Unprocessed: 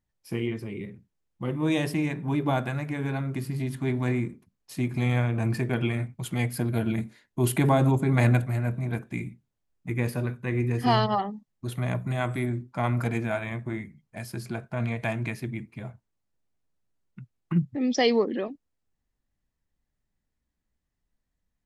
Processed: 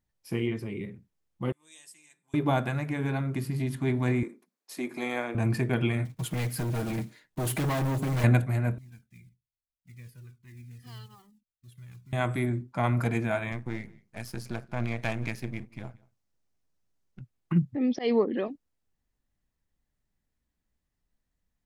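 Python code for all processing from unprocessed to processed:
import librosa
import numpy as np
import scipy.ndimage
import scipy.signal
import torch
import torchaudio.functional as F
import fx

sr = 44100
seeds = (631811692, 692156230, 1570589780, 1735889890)

y = fx.chain(x, sr, fx.bandpass_q(hz=7800.0, q=4.6),
    fx.comb(ms=5.8, depth=0.36), at=(1.52, 2.34))
y = fx.chain(y, sr, fx.highpass(hz=280.0, slope=24),
    fx.peak_eq(hz=2900.0, db=-5.0, octaves=0.29), at=(4.23, 5.35))
y = fx.chain(y, sr, fx.block_float(bits=5),
    fx.clip_hard(threshold_db=-27.0),
    fx.comb(ms=6.4, depth=0.36), at=(6.05, 8.24))
y = fx.chain(y, sr, fx.block_float(bits=5),
    fx.tone_stack(knobs='6-0-2'),
    fx.comb_cascade(direction='falling', hz=1.2), at=(8.78, 12.13))
y = fx.chain(y, sr, fx.halfwave_gain(db=-12.0),
    fx.peak_eq(hz=5700.0, db=4.5, octaves=0.55),
    fx.echo_single(ms=180, db=-24.0), at=(13.52, 17.21))
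y = fx.chain(y, sr, fx.auto_swell(attack_ms=134.0),
    fx.air_absorb(metres=240.0), at=(17.75, 18.37))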